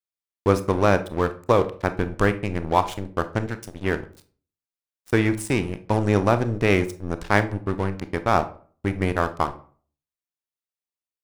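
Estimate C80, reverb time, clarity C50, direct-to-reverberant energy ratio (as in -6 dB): 20.0 dB, 0.45 s, 14.5 dB, 10.5 dB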